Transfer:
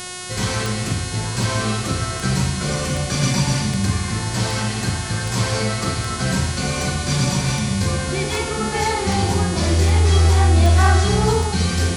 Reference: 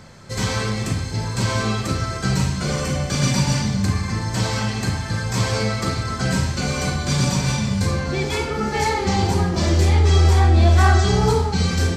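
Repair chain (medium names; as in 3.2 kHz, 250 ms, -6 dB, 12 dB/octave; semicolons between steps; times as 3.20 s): de-click; de-hum 363.1 Hz, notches 30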